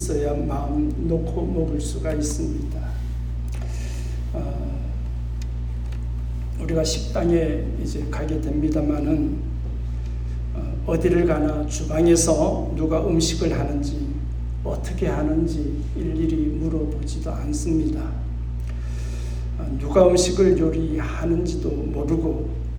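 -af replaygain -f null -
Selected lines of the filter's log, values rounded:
track_gain = +3.8 dB
track_peak = 0.452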